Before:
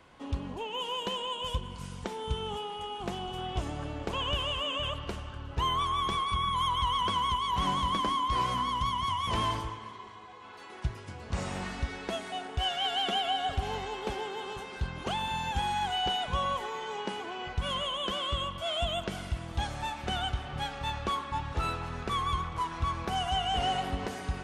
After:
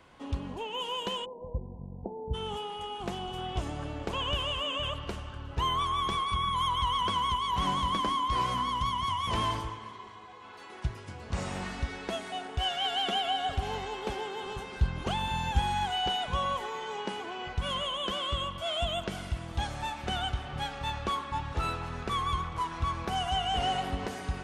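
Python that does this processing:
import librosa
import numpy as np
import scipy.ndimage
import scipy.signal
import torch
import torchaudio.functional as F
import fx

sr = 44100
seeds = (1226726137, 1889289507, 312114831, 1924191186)

y = fx.ellip_lowpass(x, sr, hz=810.0, order=4, stop_db=50, at=(1.24, 2.33), fade=0.02)
y = fx.low_shelf(y, sr, hz=140.0, db=9.0, at=(14.41, 15.85))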